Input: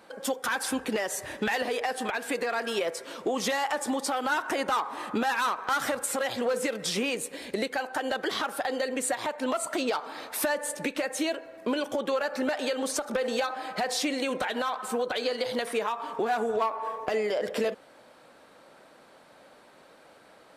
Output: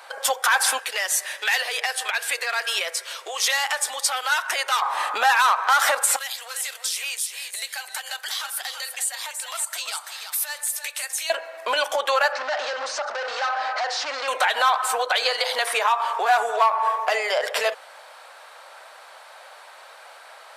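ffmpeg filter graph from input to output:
-filter_complex "[0:a]asettb=1/sr,asplit=3[a][b][c];[a]atrim=end=0.794[d];[b]atrim=start=0.79:end=4.82,asetpts=PTS-STARTPTS,afade=t=in:d=0.004:c=qsin,afade=t=out:st=4.026:d=0.004:c=qsin,highpass=f=360:w=0.5412,highpass=f=360:w=1.3066,equalizer=f=800:w=0.73:g=-11.5,bandreject=f=7.4k:w=28[e];[c]atrim=start=4.816[f];[d][e]acrossfade=d=0.004:c1=hsin:c2=qsin[g];[g][f]acrossfade=d=0.004:c1=qsin:c2=hsin,asettb=1/sr,asplit=3[h][i][j];[h]atrim=end=6.164[k];[i]atrim=start=6.16:end=11.3,asetpts=PTS-STARTPTS,afade=t=in:d=0.004:c=qsin,afade=t=out:st=5.136:d=0.004:c=qsin,aderivative,acompressor=threshold=-37dB:ratio=2.5:attack=3.2:release=140:knee=1:detection=peak,aecho=1:1:337:0.422,atrim=end_sample=226674[l];[j]atrim=start=11.296[m];[k][l]acrossfade=d=0.004:c1=hsin:c2=qsin[n];[n][m]acrossfade=d=0.004:c1=qsin:c2=hsin,asettb=1/sr,asplit=3[o][p][q];[o]atrim=end=12.324[r];[p]atrim=start=12.32:end=14.28,asetpts=PTS-STARTPTS,afade=t=in:d=0.004:c=qsin,afade=t=out:st=1.956:d=0.004:c=qsin,volume=34dB,asoftclip=hard,volume=-34dB,highpass=270,equalizer=f=270:t=q:w=4:g=8,equalizer=f=580:t=q:w=4:g=4,equalizer=f=1.5k:t=q:w=4:g=3,equalizer=f=2.4k:t=q:w=4:g=-3,equalizer=f=3.4k:t=q:w=4:g=-5,lowpass=f=5.6k:w=0.5412,lowpass=f=5.6k:w=1.3066[s];[q]atrim=start=14.276[t];[r][s]acrossfade=d=0.004:c1=hsin:c2=qsin[u];[u][t]acrossfade=d=0.004:c1=qsin:c2=hsin,highpass=f=690:w=0.5412,highpass=f=690:w=1.3066,alimiter=level_in=20.5dB:limit=-1dB:release=50:level=0:latency=1,volume=-8dB"

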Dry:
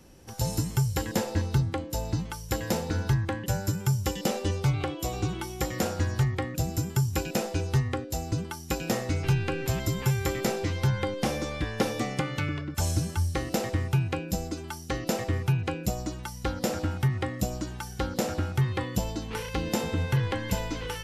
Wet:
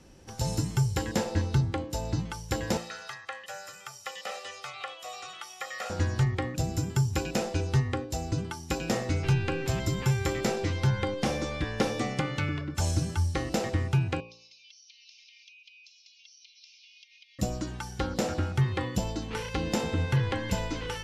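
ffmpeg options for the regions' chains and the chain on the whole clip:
-filter_complex "[0:a]asettb=1/sr,asplit=3[a][b][c];[a]atrim=end=2.774[d];[b]atrim=start=2.77:end=5.9,asetpts=PTS-STARTPTS,afade=t=in:d=0.004:c=qsin,afade=t=out:st=3.126:d=0.004:c=qsin,acrossover=split=2800[e][f];[f]acompressor=threshold=-43dB:ratio=4:attack=1:release=60[g];[e][g]amix=inputs=2:normalize=0,highpass=1.1k,aecho=1:1:1.6:0.72,atrim=end_sample=138033[h];[c]atrim=start=5.896[i];[d][h]acrossfade=d=0.004:c1=hsin:c2=qsin[j];[j][i]acrossfade=d=0.004:c1=qsin:c2=hsin,asettb=1/sr,asplit=3[k][l][m];[k]atrim=end=14.204[n];[l]atrim=start=14.2:end=17.39,asetpts=PTS-STARTPTS,afade=t=in:d=0.004:c=qsin,afade=t=out:st=3.186:d=0.004:c=qsin,asuperpass=centerf=3800:order=20:qfactor=0.97,acompressor=threshold=-52dB:ratio=10:attack=3.2:release=140:knee=1:detection=peak,aecho=1:1:3.3:0.66,atrim=end_sample=140679[o];[m]atrim=start=17.386[p];[n][o]acrossfade=d=0.004:c1=hsin:c2=qsin[q];[q][p]acrossfade=d=0.004:c1=qsin:c2=hsin,lowpass=8.3k,bandreject=f=57.66:t=h:w=4,bandreject=f=115.32:t=h:w=4,bandreject=f=172.98:t=h:w=4,bandreject=f=230.64:t=h:w=4,bandreject=f=288.3:t=h:w=4,bandreject=f=345.96:t=h:w=4,bandreject=f=403.62:t=h:w=4,bandreject=f=461.28:t=h:w=4,bandreject=f=518.94:t=h:w=4,bandreject=f=576.6:t=h:w=4,bandreject=f=634.26:t=h:w=4,bandreject=f=691.92:t=h:w=4,bandreject=f=749.58:t=h:w=4,bandreject=f=807.24:t=h:w=4,bandreject=f=864.9:t=h:w=4,bandreject=f=922.56:t=h:w=4,bandreject=f=980.22:t=h:w=4,bandreject=f=1.03788k:t=h:w=4,bandreject=f=1.09554k:t=h:w=4,bandreject=f=1.1532k:t=h:w=4"

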